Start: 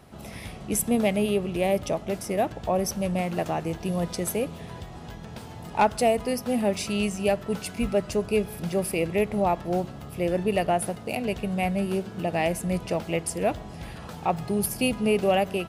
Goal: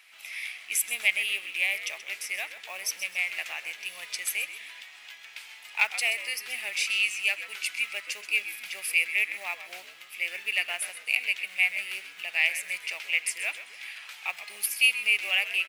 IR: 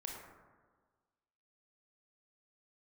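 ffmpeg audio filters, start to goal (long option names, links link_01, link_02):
-filter_complex "[0:a]acrusher=bits=8:mode=log:mix=0:aa=0.000001,highpass=frequency=2300:width_type=q:width=4.2,asplit=4[link_01][link_02][link_03][link_04];[link_02]adelay=129,afreqshift=-98,volume=-13dB[link_05];[link_03]adelay=258,afreqshift=-196,volume=-22.1dB[link_06];[link_04]adelay=387,afreqshift=-294,volume=-31.2dB[link_07];[link_01][link_05][link_06][link_07]amix=inputs=4:normalize=0"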